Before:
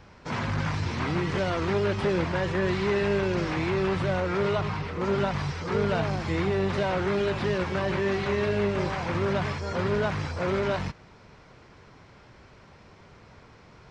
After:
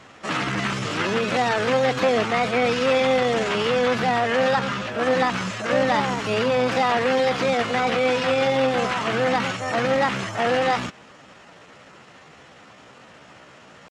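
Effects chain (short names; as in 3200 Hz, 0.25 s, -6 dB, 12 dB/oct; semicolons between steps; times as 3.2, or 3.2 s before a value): HPF 290 Hz 6 dB/oct; high shelf 5200 Hz -5.5 dB; pitch shift +4.5 st; gain +8 dB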